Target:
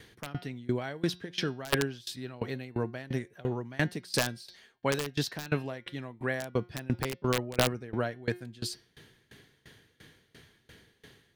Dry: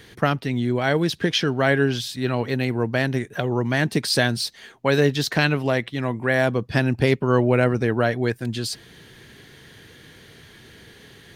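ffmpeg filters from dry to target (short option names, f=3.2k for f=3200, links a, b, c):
-af "bandreject=f=178.8:t=h:w=4,bandreject=f=357.6:t=h:w=4,bandreject=f=536.4:t=h:w=4,bandreject=f=715.2:t=h:w=4,bandreject=f=894:t=h:w=4,bandreject=f=1.0728k:t=h:w=4,bandreject=f=1.2516k:t=h:w=4,bandreject=f=1.4304k:t=h:w=4,bandreject=f=1.6092k:t=h:w=4,bandreject=f=1.788k:t=h:w=4,bandreject=f=1.9668k:t=h:w=4,bandreject=f=2.1456k:t=h:w=4,bandreject=f=2.3244k:t=h:w=4,bandreject=f=2.5032k:t=h:w=4,bandreject=f=2.682k:t=h:w=4,bandreject=f=2.8608k:t=h:w=4,bandreject=f=3.0396k:t=h:w=4,bandreject=f=3.2184k:t=h:w=4,bandreject=f=3.3972k:t=h:w=4,bandreject=f=3.576k:t=h:w=4,bandreject=f=3.7548k:t=h:w=4,bandreject=f=3.9336k:t=h:w=4,bandreject=f=4.1124k:t=h:w=4,bandreject=f=4.2912k:t=h:w=4,bandreject=f=4.47k:t=h:w=4,bandreject=f=4.6488k:t=h:w=4,bandreject=f=4.8276k:t=h:w=4,bandreject=f=5.0064k:t=h:w=4,bandreject=f=5.1852k:t=h:w=4,bandreject=f=5.364k:t=h:w=4,bandreject=f=5.5428k:t=h:w=4,bandreject=f=5.7216k:t=h:w=4,bandreject=f=5.9004k:t=h:w=4,aeval=exprs='(mod(2.37*val(0)+1,2)-1)/2.37':c=same,aeval=exprs='val(0)*pow(10,-23*if(lt(mod(2.9*n/s,1),2*abs(2.9)/1000),1-mod(2.9*n/s,1)/(2*abs(2.9)/1000),(mod(2.9*n/s,1)-2*abs(2.9)/1000)/(1-2*abs(2.9)/1000))/20)':c=same,volume=-4dB"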